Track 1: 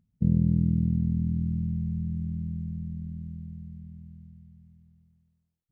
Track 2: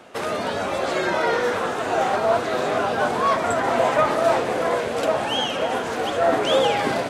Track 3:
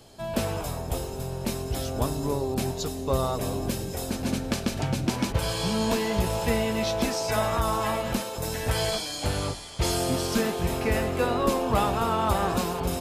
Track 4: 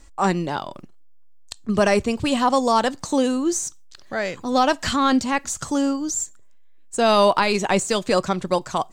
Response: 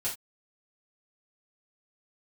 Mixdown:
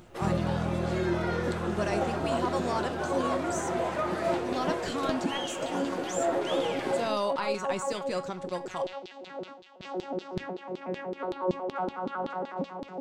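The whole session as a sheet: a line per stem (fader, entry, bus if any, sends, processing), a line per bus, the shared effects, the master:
-7.5 dB, 0.00 s, no send, upward compressor, threshold -31 dBFS
-14.5 dB, 0.00 s, send -9 dB, bell 340 Hz +14 dB 0.24 oct
+2.0 dB, 0.00 s, send -20 dB, arpeggiated vocoder bare fifth, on F#3, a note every 92 ms; LFO band-pass saw down 5.3 Hz 320–4000 Hz
-15.0 dB, 0.00 s, send -14.5 dB, dry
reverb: on, pre-delay 3 ms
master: dry

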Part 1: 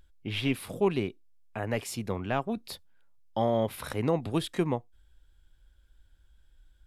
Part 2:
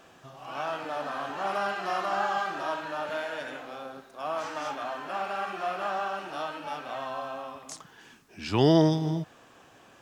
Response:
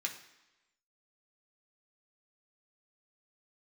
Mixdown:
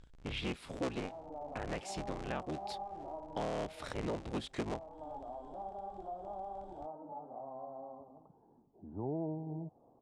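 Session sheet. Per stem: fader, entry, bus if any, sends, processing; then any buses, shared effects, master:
+0.5 dB, 0.00 s, no send, cycle switcher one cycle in 3, inverted; LPF 8300 Hz 24 dB/oct
-6.5 dB, 0.45 s, no send, elliptic low-pass 860 Hz, stop band 60 dB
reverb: off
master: compressor 2:1, threshold -43 dBFS, peak gain reduction 13 dB

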